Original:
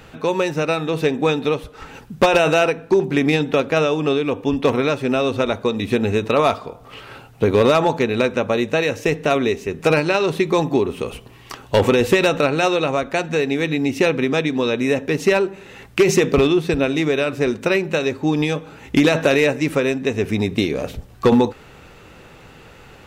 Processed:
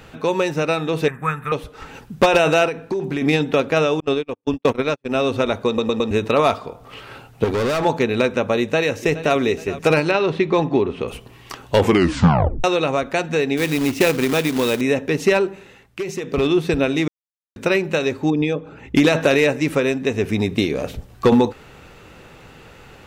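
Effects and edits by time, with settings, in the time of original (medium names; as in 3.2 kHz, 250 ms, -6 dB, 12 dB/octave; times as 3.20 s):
1.08–1.52 s: FFT filter 160 Hz 0 dB, 260 Hz -20 dB, 820 Hz -10 dB, 1.2 kHz +8 dB, 1.9 kHz +4 dB, 4.6 kHz -28 dB, 9.3 kHz +5 dB
2.65–3.22 s: compression, threshold -19 dBFS
4.00–5.15 s: gate -19 dBFS, range -48 dB
5.67 s: stutter in place 0.11 s, 4 plays
7.44–7.85 s: hard clipper -18 dBFS
8.60–9.36 s: echo throw 420 ms, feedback 45%, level -15 dB
10.11–11.08 s: low-pass 3.8 kHz
11.81 s: tape stop 0.83 s
13.57–14.81 s: companded quantiser 4-bit
15.51–16.56 s: dip -12 dB, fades 0.32 s
17.08–17.56 s: mute
18.30–18.95 s: resonances exaggerated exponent 1.5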